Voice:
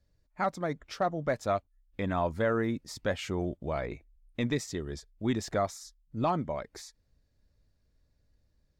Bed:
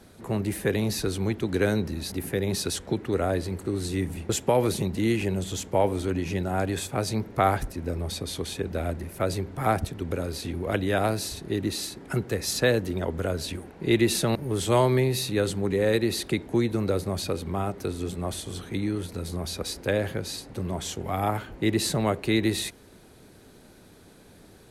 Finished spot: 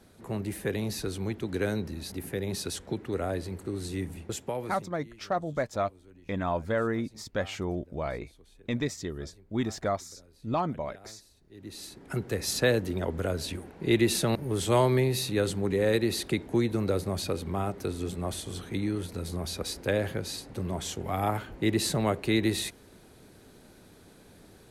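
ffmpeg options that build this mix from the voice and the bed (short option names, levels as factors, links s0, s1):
-filter_complex "[0:a]adelay=4300,volume=1[s0];[1:a]volume=10,afade=t=out:st=4.02:d=0.95:silence=0.0794328,afade=t=in:st=11.51:d=0.9:silence=0.0530884[s1];[s0][s1]amix=inputs=2:normalize=0"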